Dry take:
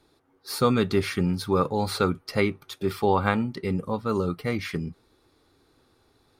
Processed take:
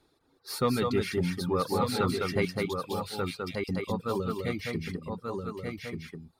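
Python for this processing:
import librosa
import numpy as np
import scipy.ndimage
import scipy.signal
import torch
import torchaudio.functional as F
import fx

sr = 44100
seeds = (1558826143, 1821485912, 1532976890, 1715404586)

y = fx.steep_highpass(x, sr, hz=2400.0, slope=48, at=(2.45, 3.69))
y = y + 10.0 ** (-3.0 / 20.0) * np.pad(y, (int(204 * sr / 1000.0), 0))[:len(y)]
y = 10.0 ** (-10.5 / 20.0) * np.tanh(y / 10.0 ** (-10.5 / 20.0))
y = y + 10.0 ** (-4.5 / 20.0) * np.pad(y, (int(1186 * sr / 1000.0), 0))[:len(y)]
y = fx.dereverb_blind(y, sr, rt60_s=0.75)
y = F.gain(torch.from_numpy(y), -4.0).numpy()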